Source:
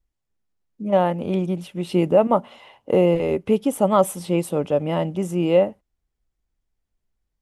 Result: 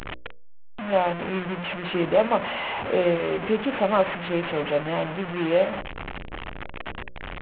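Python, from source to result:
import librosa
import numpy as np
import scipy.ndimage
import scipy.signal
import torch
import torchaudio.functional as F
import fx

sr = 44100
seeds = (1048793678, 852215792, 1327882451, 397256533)

y = fx.delta_mod(x, sr, bps=16000, step_db=-20.0)
y = fx.low_shelf(y, sr, hz=200.0, db=-9.0)
y = fx.hum_notches(y, sr, base_hz=60, count=10)
y = F.gain(torch.from_numpy(y), -2.0).numpy()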